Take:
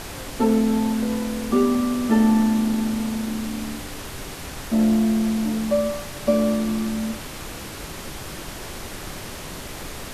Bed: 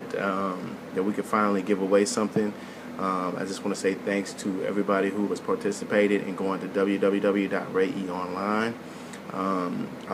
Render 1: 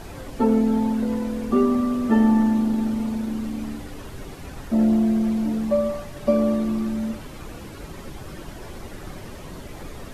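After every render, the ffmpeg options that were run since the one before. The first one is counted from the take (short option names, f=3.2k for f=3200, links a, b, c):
-af "afftdn=nr=11:nf=-35"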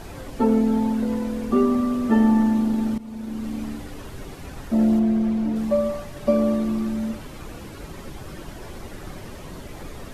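-filter_complex "[0:a]asettb=1/sr,asplit=3[a][b][c];[a]atrim=end=4.994[d];[b]atrim=start=4.99:end=5.56,asetpts=PTS-STARTPTS,afade=t=in:d=0.004:c=qsin,afade=t=out:st=0.566:d=0.004:c=qsin,highshelf=f=4.7k:g=-9.5[e];[c]atrim=start=5.556[f];[d][e]acrossfade=d=0.004:c1=hsin:c2=qsin[g];[g][f]acrossfade=d=0.004:c1=qsin:c2=hsin,asplit=2[h][i];[h]atrim=end=2.98,asetpts=PTS-STARTPTS,afade=t=out:st=2.976:d=0.004:c=hsin:silence=0.149624[j];[i]atrim=start=2.98,asetpts=PTS-STARTPTS,afade=t=in:d=0.55:silence=0.149624[k];[j][k]concat=n=2:v=0:a=1"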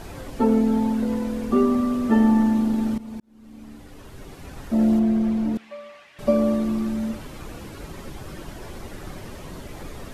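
-filter_complex "[0:a]asettb=1/sr,asplit=3[a][b][c];[a]atrim=end=5.574[d];[b]atrim=start=5.57:end=6.19,asetpts=PTS-STARTPTS,afade=t=in:d=0.004:c=qsin,afade=t=out:st=0.616:d=0.004:c=qsin,bandpass=f=2.4k:t=q:w=1.9[e];[c]atrim=start=6.186[f];[d][e]acrossfade=d=0.004:c1=hsin:c2=qsin[g];[g][f]acrossfade=d=0.004:c1=qsin:c2=hsin,asplit=2[h][i];[h]atrim=end=3.2,asetpts=PTS-STARTPTS,afade=t=out:st=3.196:d=0.004:c=hsin[j];[i]atrim=start=3.2,asetpts=PTS-STARTPTS,afade=t=in:d=1.69[k];[j][k]concat=n=2:v=0:a=1"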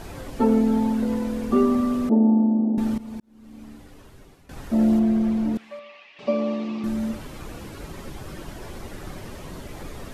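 -filter_complex "[0:a]asettb=1/sr,asplit=3[a][b][c];[a]atrim=end=2.094[d];[b]atrim=start=2.09:end=2.78,asetpts=PTS-STARTPTS,afade=t=in:d=0.004:c=qsin,afade=t=out:st=0.686:d=0.004:c=qsin,asuperpass=centerf=380:order=8:qfactor=0.63[e];[c]atrim=start=2.776[f];[d][e]acrossfade=d=0.004:c1=hsin:c2=qsin[g];[g][f]acrossfade=d=0.004:c1=qsin:c2=hsin,asettb=1/sr,asplit=3[h][i][j];[h]atrim=end=5.794[k];[i]atrim=start=5.79:end=6.84,asetpts=PTS-STARTPTS,afade=t=in:d=0.004:c=qsin,afade=t=out:st=1.046:d=0.004:c=qsin,highpass=270,equalizer=f=350:t=q:w=4:g=-4,equalizer=f=630:t=q:w=4:g=-4,equalizer=f=1.5k:t=q:w=4:g=-9,equalizer=f=2.6k:t=q:w=4:g=7,lowpass=f=5.2k:w=0.5412,lowpass=f=5.2k:w=1.3066[l];[j]atrim=start=6.836[m];[k][l]acrossfade=d=0.004:c1=hsin:c2=qsin[n];[n][m]acrossfade=d=0.004:c1=qsin:c2=hsin,asplit=2[o][p];[o]atrim=end=4.49,asetpts=PTS-STARTPTS,afade=t=out:st=3.63:d=0.86:silence=0.133352[q];[p]atrim=start=4.49,asetpts=PTS-STARTPTS,afade=t=in:d=0.004:c=hsin:silence=0.133352[r];[q][r]concat=n=2:v=0:a=1"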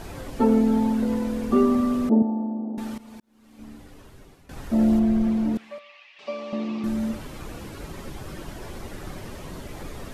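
-filter_complex "[0:a]asettb=1/sr,asplit=3[a][b][c];[a]atrim=end=2.224[d];[b]atrim=start=2.22:end=3.59,asetpts=PTS-STARTPTS,afade=t=in:d=0.004:c=qsin,afade=t=out:st=1.366:d=0.004:c=qsin,lowshelf=f=420:g=-11.5[e];[c]atrim=start=3.586[f];[d][e]acrossfade=d=0.004:c1=hsin:c2=qsin[g];[g][f]acrossfade=d=0.004:c1=qsin:c2=hsin,asettb=1/sr,asplit=3[h][i][j];[h]atrim=end=4.584[k];[i]atrim=start=4.58:end=5.27,asetpts=PTS-STARTPTS,afade=t=in:d=0.004:c=qsin,afade=t=out:st=0.686:d=0.004:c=qsin,asubboost=boost=8:cutoff=150[l];[j]atrim=start=5.266[m];[k][l]acrossfade=d=0.004:c1=hsin:c2=qsin[n];[n][m]acrossfade=d=0.004:c1=qsin:c2=hsin,asettb=1/sr,asplit=3[o][p][q];[o]atrim=end=5.784[r];[p]atrim=start=5.78:end=6.53,asetpts=PTS-STARTPTS,afade=t=in:d=0.004:c=qsin,afade=t=out:st=0.746:d=0.004:c=qsin,highpass=f=1.4k:p=1[s];[q]atrim=start=6.526[t];[r][s]acrossfade=d=0.004:c1=hsin:c2=qsin[u];[u][t]acrossfade=d=0.004:c1=qsin:c2=hsin"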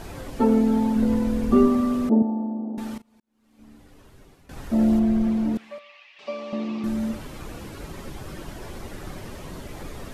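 -filter_complex "[0:a]asettb=1/sr,asplit=3[a][b][c];[a]atrim=end=0.964[d];[b]atrim=start=0.96:end=1.68,asetpts=PTS-STARTPTS,afade=t=in:d=0.004:c=qsin,afade=t=out:st=0.716:d=0.004:c=qsin,lowshelf=f=160:g=9.5[e];[c]atrim=start=1.676[f];[d][e]acrossfade=d=0.004:c1=hsin:c2=qsin[g];[g][f]acrossfade=d=0.004:c1=qsin:c2=hsin,asplit=2[h][i];[h]atrim=end=3.02,asetpts=PTS-STARTPTS,afade=t=out:st=3.016:d=0.004:c=hsin:silence=0.0891251[j];[i]atrim=start=3.02,asetpts=PTS-STARTPTS,afade=t=in:d=1.59:silence=0.0891251[k];[j][k]concat=n=2:v=0:a=1"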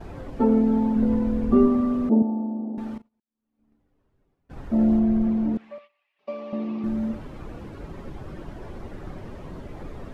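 -af "agate=range=-18dB:threshold=-44dB:ratio=16:detection=peak,lowpass=f=1.1k:p=1"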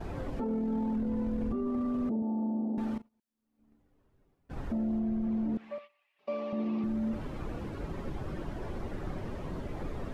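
-af "acompressor=threshold=-28dB:ratio=2,alimiter=level_in=2dB:limit=-24dB:level=0:latency=1:release=12,volume=-2dB"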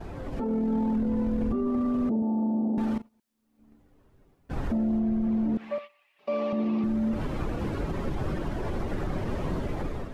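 -af "alimiter=level_in=5.5dB:limit=-24dB:level=0:latency=1:release=53,volume=-5.5dB,dynaudnorm=f=150:g=5:m=8.5dB"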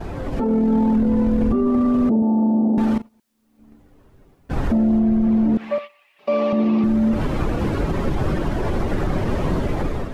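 -af "volume=9dB"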